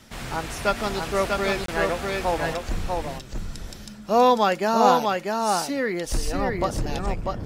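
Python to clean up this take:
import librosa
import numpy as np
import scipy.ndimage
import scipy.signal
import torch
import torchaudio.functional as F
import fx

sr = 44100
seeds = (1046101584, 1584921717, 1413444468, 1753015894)

y = fx.fix_interpolate(x, sr, at_s=(1.66,), length_ms=23.0)
y = fx.fix_echo_inverse(y, sr, delay_ms=644, level_db=-3.5)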